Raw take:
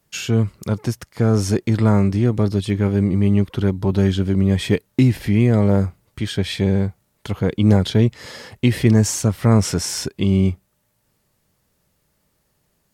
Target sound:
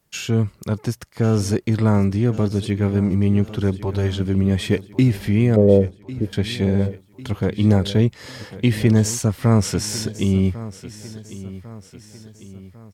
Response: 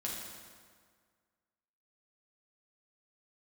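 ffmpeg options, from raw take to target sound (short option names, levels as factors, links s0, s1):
-filter_complex "[0:a]asettb=1/sr,asplit=3[s0][s1][s2];[s0]atrim=end=3.764[s3];[s1]atrim=start=3.76:end=4.2,asetpts=PTS-STARTPTS,afade=t=in:d=0.004:c=qsin,afade=t=out:st=0.436:d=0.004:c=qsin,equalizer=f=210:w=2.1:g=-13[s4];[s2]atrim=start=4.196[s5];[s3][s4]acrossfade=d=0.004:c1=hsin:c2=qsin[s6];[s6][s5]acrossfade=d=0.004:c1=qsin:c2=hsin,asettb=1/sr,asplit=3[s7][s8][s9];[s7]atrim=end=5.564[s10];[s8]atrim=start=5.56:end=6.33,asetpts=PTS-STARTPTS,afade=t=in:d=0.004:c=qsin,afade=t=out:st=0.766:d=0.004:c=qsin,lowpass=f=470:t=q:w=4.4[s11];[s9]atrim=start=6.326[s12];[s10][s11]acrossfade=d=0.004:c1=hsin:c2=qsin[s13];[s13][s12]acrossfade=d=0.004:c1=qsin:c2=hsin,aecho=1:1:1099|2198|3297|4396:0.158|0.0777|0.0381|0.0186,volume=0.841"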